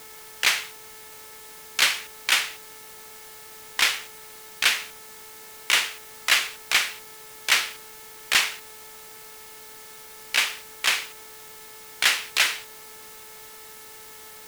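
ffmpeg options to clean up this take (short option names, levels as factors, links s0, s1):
-af "bandreject=f=435.2:t=h:w=4,bandreject=f=870.4:t=h:w=4,bandreject=f=1305.6:t=h:w=4,bandreject=f=1740.8:t=h:w=4,bandreject=f=2176:t=h:w=4,afwtdn=0.0056"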